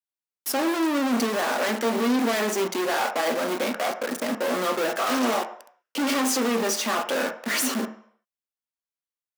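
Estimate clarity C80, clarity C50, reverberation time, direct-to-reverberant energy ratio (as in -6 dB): 14.5 dB, 11.5 dB, 0.60 s, 5.5 dB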